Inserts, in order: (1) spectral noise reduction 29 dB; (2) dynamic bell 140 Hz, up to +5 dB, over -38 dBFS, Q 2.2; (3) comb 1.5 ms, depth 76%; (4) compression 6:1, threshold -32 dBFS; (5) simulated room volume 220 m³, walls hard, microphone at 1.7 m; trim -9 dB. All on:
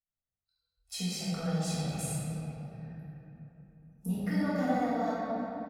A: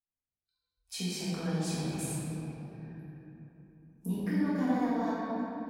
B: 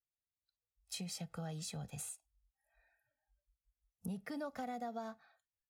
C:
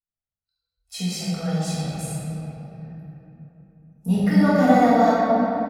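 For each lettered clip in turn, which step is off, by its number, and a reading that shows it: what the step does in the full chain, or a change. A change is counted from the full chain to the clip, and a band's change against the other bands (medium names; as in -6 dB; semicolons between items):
3, 250 Hz band +2.5 dB; 5, echo-to-direct 10.5 dB to none; 4, mean gain reduction 9.0 dB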